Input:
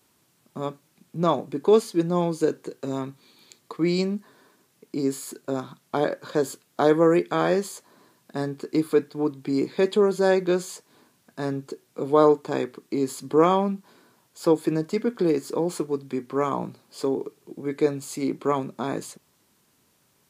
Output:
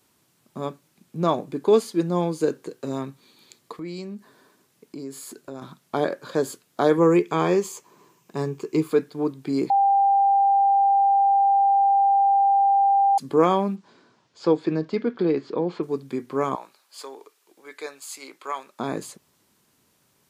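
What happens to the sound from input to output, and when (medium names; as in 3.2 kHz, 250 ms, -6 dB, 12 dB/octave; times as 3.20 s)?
3.74–5.62 s: compression 2.5:1, threshold -36 dBFS
6.97–8.91 s: rippled EQ curve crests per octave 0.74, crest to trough 8 dB
9.70–13.18 s: bleep 793 Hz -15 dBFS
13.75–15.82 s: low-pass 6.9 kHz -> 3.6 kHz 24 dB/octave
16.55–18.80 s: high-pass 1 kHz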